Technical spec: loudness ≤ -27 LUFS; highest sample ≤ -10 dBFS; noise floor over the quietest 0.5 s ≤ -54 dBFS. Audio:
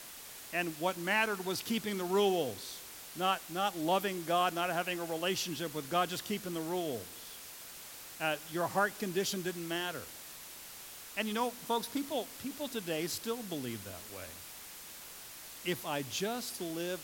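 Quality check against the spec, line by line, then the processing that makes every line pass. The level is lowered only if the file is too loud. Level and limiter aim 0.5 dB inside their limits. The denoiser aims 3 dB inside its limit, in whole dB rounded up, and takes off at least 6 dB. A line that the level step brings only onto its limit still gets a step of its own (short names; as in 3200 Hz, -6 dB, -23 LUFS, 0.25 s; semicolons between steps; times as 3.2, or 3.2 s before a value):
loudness -35.0 LUFS: OK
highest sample -16.5 dBFS: OK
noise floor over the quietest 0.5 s -49 dBFS: fail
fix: denoiser 8 dB, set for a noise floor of -49 dBFS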